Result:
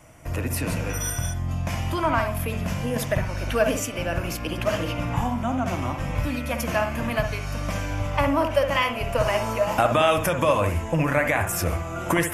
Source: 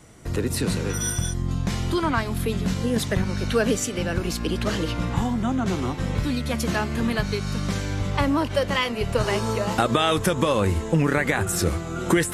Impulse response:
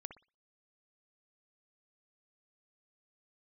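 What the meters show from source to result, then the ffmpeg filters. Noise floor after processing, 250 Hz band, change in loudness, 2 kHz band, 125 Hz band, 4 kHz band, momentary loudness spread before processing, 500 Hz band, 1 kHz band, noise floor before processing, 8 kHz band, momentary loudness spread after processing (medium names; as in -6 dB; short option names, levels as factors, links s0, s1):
-32 dBFS, -4.0 dB, -0.5 dB, +1.0 dB, -1.5 dB, -3.5 dB, 5 LU, +1.0 dB, +2.5 dB, -31 dBFS, -2.5 dB, 7 LU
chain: -filter_complex "[0:a]equalizer=f=200:t=o:w=0.33:g=-9,equalizer=f=400:t=o:w=0.33:g=-12,equalizer=f=630:t=o:w=0.33:g=9,equalizer=f=1000:t=o:w=0.33:g=4,equalizer=f=2500:t=o:w=0.33:g=6,equalizer=f=4000:t=o:w=0.33:g=-12,equalizer=f=8000:t=o:w=0.33:g=-4,equalizer=f=12500:t=o:w=0.33:g=7[s0];[1:a]atrim=start_sample=2205[s1];[s0][s1]afir=irnorm=-1:irlink=0,volume=1.68"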